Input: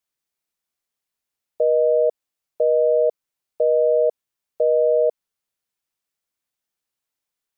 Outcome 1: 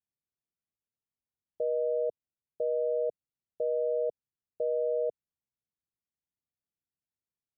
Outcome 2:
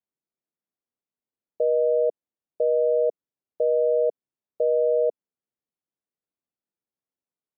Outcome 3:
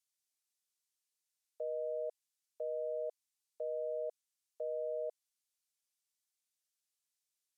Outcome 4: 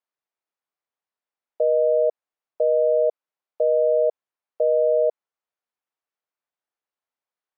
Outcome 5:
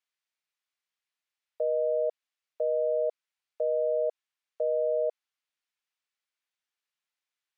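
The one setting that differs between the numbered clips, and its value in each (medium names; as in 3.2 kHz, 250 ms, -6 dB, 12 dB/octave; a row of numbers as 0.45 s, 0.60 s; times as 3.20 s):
band-pass filter, frequency: 100 Hz, 260 Hz, 7.5 kHz, 850 Hz, 2.3 kHz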